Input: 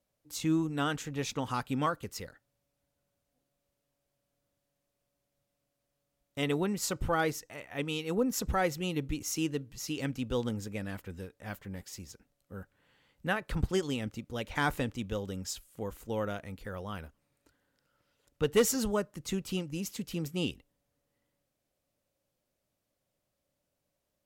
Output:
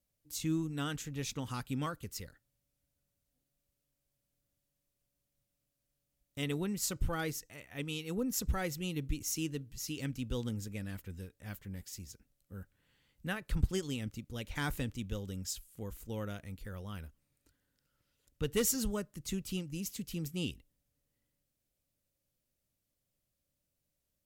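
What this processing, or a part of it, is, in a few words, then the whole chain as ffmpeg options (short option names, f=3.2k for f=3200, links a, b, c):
smiley-face EQ: -af "lowshelf=f=93:g=8,equalizer=f=780:t=o:w=2:g=-7.5,highshelf=f=7.7k:g=6.5,volume=-3.5dB"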